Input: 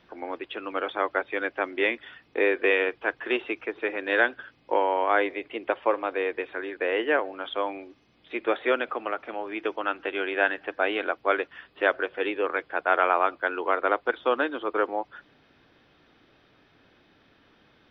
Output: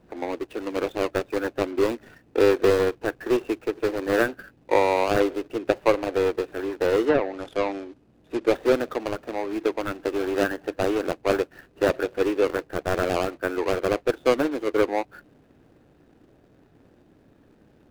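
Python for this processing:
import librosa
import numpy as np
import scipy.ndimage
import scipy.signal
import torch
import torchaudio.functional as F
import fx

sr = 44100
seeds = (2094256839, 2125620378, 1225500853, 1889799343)

y = scipy.ndimage.median_filter(x, 41, mode='constant')
y = fx.env_lowpass_down(y, sr, base_hz=2600.0, full_db=-23.5, at=(7.06, 8.47))
y = y * 10.0 ** (7.5 / 20.0)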